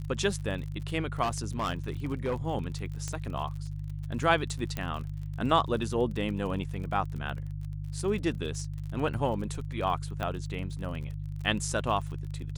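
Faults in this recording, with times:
surface crackle 46 per second −38 dBFS
mains hum 50 Hz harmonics 3 −36 dBFS
0:01.22–0:02.36: clipping −25 dBFS
0:03.08: click −21 dBFS
0:04.77: click −18 dBFS
0:10.23: click −19 dBFS

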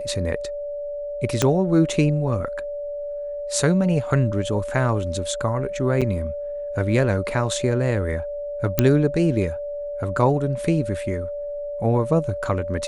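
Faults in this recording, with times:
whistle 580 Hz −27 dBFS
0:01.42: click −4 dBFS
0:06.01–0:06.02: drop-out 6.8 ms
0:08.79: click −2 dBFS

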